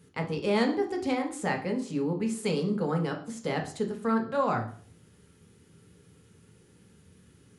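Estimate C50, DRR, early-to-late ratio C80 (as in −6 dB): 10.0 dB, 1.5 dB, 14.0 dB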